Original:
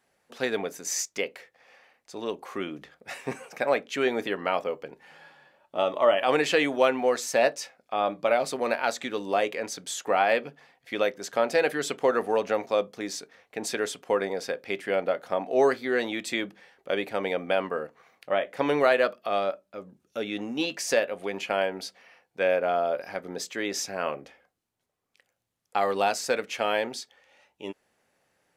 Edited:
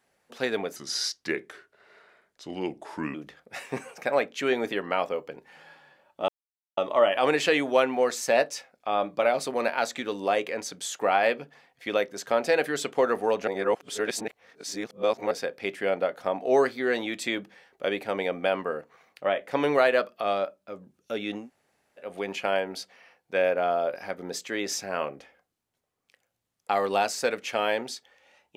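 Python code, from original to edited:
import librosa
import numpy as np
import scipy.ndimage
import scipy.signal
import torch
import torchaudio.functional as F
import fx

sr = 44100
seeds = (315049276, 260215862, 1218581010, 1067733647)

y = fx.edit(x, sr, fx.speed_span(start_s=0.76, length_s=1.93, speed=0.81),
    fx.insert_silence(at_s=5.83, length_s=0.49),
    fx.reverse_span(start_s=12.53, length_s=1.84),
    fx.room_tone_fill(start_s=20.48, length_s=0.62, crossfade_s=0.16), tone=tone)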